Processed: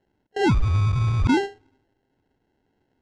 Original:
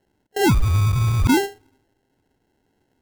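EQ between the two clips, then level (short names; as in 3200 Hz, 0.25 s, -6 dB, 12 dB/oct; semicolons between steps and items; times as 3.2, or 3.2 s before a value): Gaussian blur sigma 1.5 samples; -2.5 dB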